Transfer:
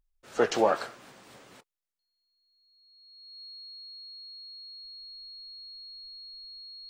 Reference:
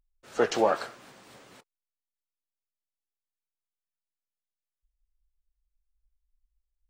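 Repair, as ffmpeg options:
-af "bandreject=f=4300:w=30"

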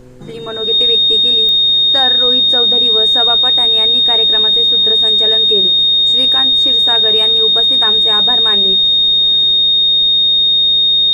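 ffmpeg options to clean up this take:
-af "adeclick=t=4,bandreject=f=125.7:t=h:w=4,bandreject=f=251.4:t=h:w=4,bandreject=f=377.1:t=h:w=4,bandreject=f=502.8:t=h:w=4,bandreject=f=3700:w=30,agate=range=0.0891:threshold=0.708"

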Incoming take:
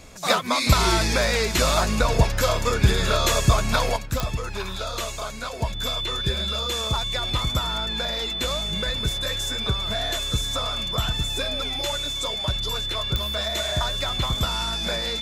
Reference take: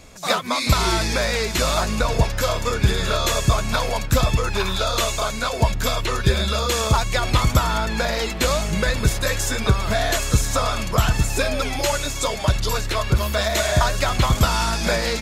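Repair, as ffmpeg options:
-af "adeclick=t=4,bandreject=f=3500:w=30,asetnsamples=n=441:p=0,asendcmd='3.96 volume volume 8dB',volume=1"

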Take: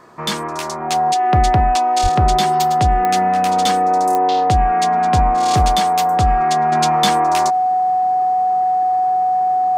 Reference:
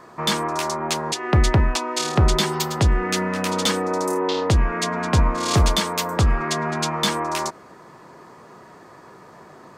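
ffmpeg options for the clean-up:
-filter_complex "[0:a]adeclick=t=4,bandreject=f=740:w=30,asplit=3[s0][s1][s2];[s0]afade=t=out:st=2.02:d=0.02[s3];[s1]highpass=f=140:w=0.5412,highpass=f=140:w=1.3066,afade=t=in:st=2.02:d=0.02,afade=t=out:st=2.14:d=0.02[s4];[s2]afade=t=in:st=2.14:d=0.02[s5];[s3][s4][s5]amix=inputs=3:normalize=0,asetnsamples=n=441:p=0,asendcmd='6.72 volume volume -3.5dB',volume=1"

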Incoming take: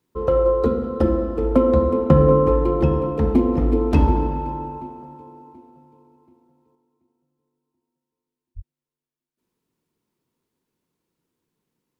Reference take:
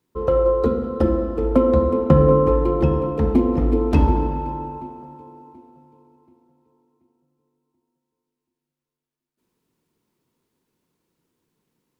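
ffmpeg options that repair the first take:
-filter_complex "[0:a]asplit=3[s0][s1][s2];[s0]afade=t=out:st=8.55:d=0.02[s3];[s1]highpass=f=140:w=0.5412,highpass=f=140:w=1.3066,afade=t=in:st=8.55:d=0.02,afade=t=out:st=8.67:d=0.02[s4];[s2]afade=t=in:st=8.67:d=0.02[s5];[s3][s4][s5]amix=inputs=3:normalize=0,asetnsamples=n=441:p=0,asendcmd='6.75 volume volume 4.5dB',volume=1"

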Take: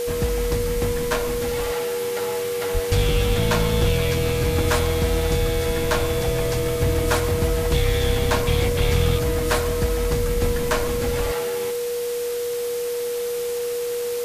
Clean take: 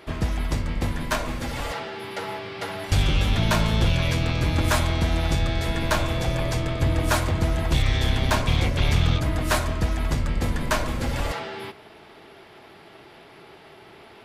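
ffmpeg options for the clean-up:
-filter_complex "[0:a]adeclick=t=4,bandreject=f=480:w=30,asplit=3[s0][s1][s2];[s0]afade=t=out:st=2.73:d=0.02[s3];[s1]highpass=f=140:w=0.5412,highpass=f=140:w=1.3066,afade=t=in:st=2.73:d=0.02,afade=t=out:st=2.85:d=0.02[s4];[s2]afade=t=in:st=2.85:d=0.02[s5];[s3][s4][s5]amix=inputs=3:normalize=0,asplit=3[s6][s7][s8];[s6]afade=t=out:st=10.41:d=0.02[s9];[s7]highpass=f=140:w=0.5412,highpass=f=140:w=1.3066,afade=t=in:st=10.41:d=0.02,afade=t=out:st=10.53:d=0.02[s10];[s8]afade=t=in:st=10.53:d=0.02[s11];[s9][s10][s11]amix=inputs=3:normalize=0,afwtdn=0.018"

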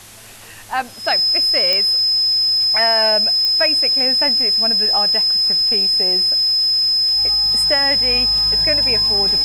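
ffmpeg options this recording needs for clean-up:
-af "adeclick=t=4,bandreject=f=107.9:t=h:w=4,bandreject=f=215.8:t=h:w=4,bandreject=f=323.7:t=h:w=4,bandreject=f=5100:w=30,afwtdn=0.011"

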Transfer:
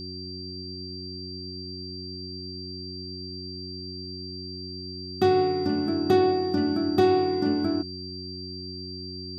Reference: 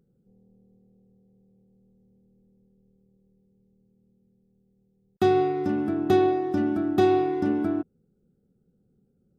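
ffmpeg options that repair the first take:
-af "adeclick=t=4,bandreject=f=92.1:t=h:w=4,bandreject=f=184.2:t=h:w=4,bandreject=f=276.3:t=h:w=4,bandreject=f=368.4:t=h:w=4,bandreject=f=4700:w=30"

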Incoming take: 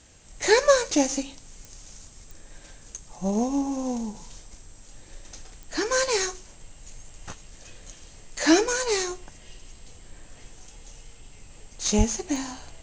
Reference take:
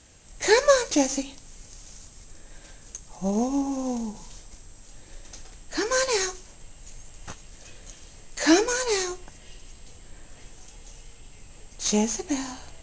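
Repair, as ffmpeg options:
-filter_complex "[0:a]adeclick=t=4,asplit=3[s0][s1][s2];[s0]afade=t=out:st=11.97:d=0.02[s3];[s1]highpass=f=140:w=0.5412,highpass=f=140:w=1.3066,afade=t=in:st=11.97:d=0.02,afade=t=out:st=12.09:d=0.02[s4];[s2]afade=t=in:st=12.09:d=0.02[s5];[s3][s4][s5]amix=inputs=3:normalize=0"

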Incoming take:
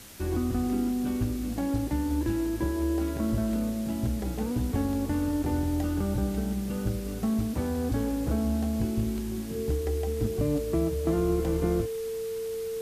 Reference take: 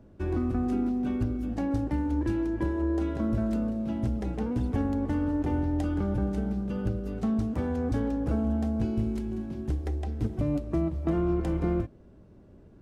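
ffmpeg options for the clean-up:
-af "bandreject=f=450:w=30,afwtdn=0.0045"

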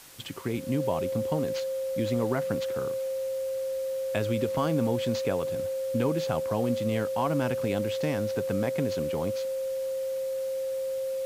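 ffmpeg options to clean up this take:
-af "bandreject=f=530:w=30,afwtdn=0.0035"

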